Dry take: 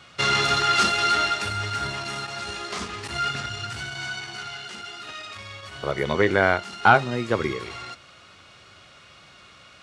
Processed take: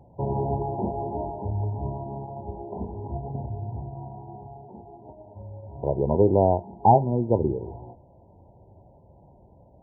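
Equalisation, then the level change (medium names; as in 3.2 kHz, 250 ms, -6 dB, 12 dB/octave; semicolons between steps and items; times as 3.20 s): brick-wall FIR low-pass 1 kHz; bass shelf 87 Hz +11 dB; +1.5 dB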